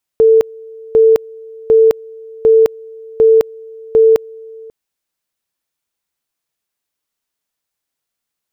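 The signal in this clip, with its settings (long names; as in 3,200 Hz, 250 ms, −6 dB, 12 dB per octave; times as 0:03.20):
tone at two levels in turn 446 Hz −4.5 dBFS, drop 25.5 dB, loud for 0.21 s, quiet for 0.54 s, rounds 6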